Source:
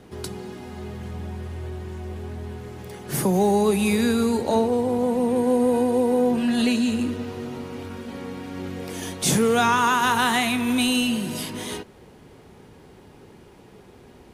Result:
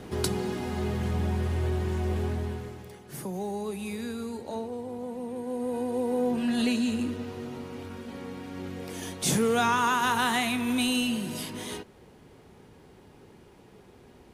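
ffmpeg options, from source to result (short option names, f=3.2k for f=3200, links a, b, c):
-af "volume=14dB,afade=t=out:st=2.21:d=0.59:silence=0.281838,afade=t=out:st=2.8:d=0.31:silence=0.398107,afade=t=in:st=5.46:d=1.04:silence=0.354813"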